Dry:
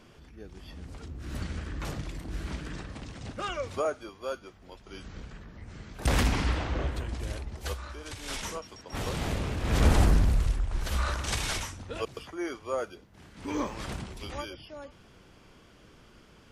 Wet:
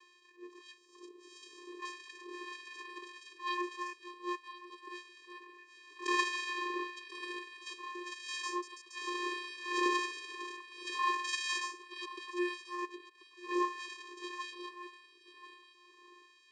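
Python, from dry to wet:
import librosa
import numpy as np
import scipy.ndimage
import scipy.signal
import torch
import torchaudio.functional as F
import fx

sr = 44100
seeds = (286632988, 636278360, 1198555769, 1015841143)

y = fx.band_shelf(x, sr, hz=1800.0, db=-11.5, octaves=1.7, at=(0.77, 1.79))
y = fx.vocoder(y, sr, bands=8, carrier='square', carrier_hz=354.0)
y = fx.filter_lfo_highpass(y, sr, shape='sine', hz=1.6, low_hz=730.0, high_hz=2000.0, q=0.76)
y = y + 10.0 ** (-15.0 / 20.0) * np.pad(y, (int(1038 * sr / 1000.0), 0))[:len(y)]
y = fx.attack_slew(y, sr, db_per_s=220.0)
y = y * librosa.db_to_amplitude(8.0)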